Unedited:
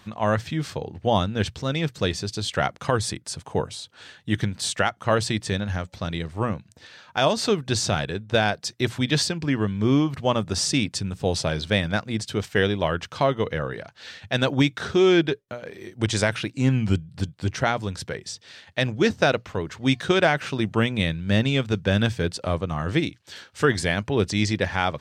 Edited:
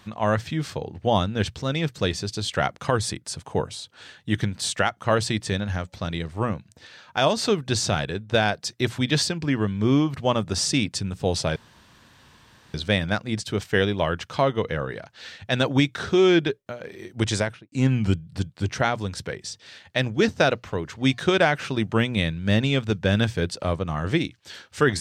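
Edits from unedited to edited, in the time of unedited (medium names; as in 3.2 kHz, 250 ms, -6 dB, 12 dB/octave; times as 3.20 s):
11.56 s: insert room tone 1.18 s
16.12–16.54 s: studio fade out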